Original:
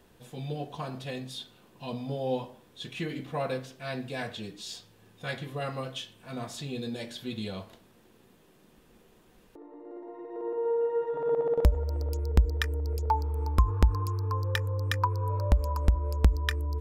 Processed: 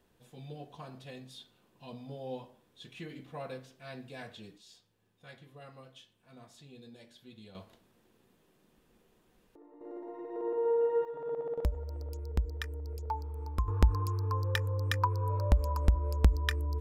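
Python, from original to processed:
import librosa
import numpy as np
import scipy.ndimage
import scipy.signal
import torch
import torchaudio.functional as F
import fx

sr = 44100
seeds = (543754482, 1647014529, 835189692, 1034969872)

y = fx.gain(x, sr, db=fx.steps((0.0, -10.0), (4.58, -17.0), (7.55, -8.0), (9.81, -0.5), (11.05, -9.0), (13.68, -2.0)))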